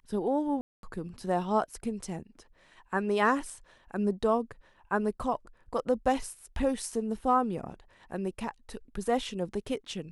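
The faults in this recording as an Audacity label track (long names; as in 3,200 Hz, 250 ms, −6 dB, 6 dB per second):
0.610000	0.830000	drop-out 222 ms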